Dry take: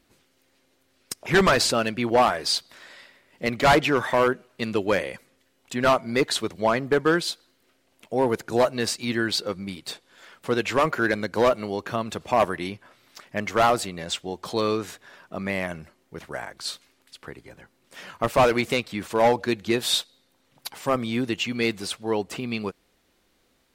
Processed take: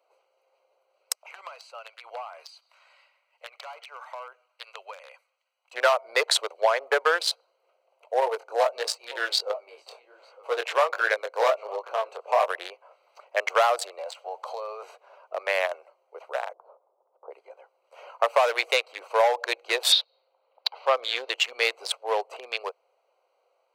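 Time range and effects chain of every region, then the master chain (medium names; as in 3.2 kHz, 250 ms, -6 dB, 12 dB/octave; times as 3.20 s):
1.15–5.73 s: high-pass 1.5 kHz + compression 16:1, threshold -33 dBFS
8.20–12.48 s: high-pass 140 Hz + delay 908 ms -17.5 dB + chorus 1.4 Hz, delay 18 ms, depth 5.7 ms
13.98–14.83 s: companding laws mixed up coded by mu + high-pass 490 Hz 24 dB/octave + compression 20:1, threshold -30 dBFS
16.53–17.31 s: Chebyshev low-pass 970 Hz, order 3 + tilt EQ -2.5 dB/octave
19.92–21.31 s: resonant high shelf 5.8 kHz -12.5 dB, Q 3 + tape noise reduction on one side only decoder only
whole clip: local Wiener filter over 25 samples; steep high-pass 500 Hz 48 dB/octave; compression 12:1, threshold -23 dBFS; trim +6.5 dB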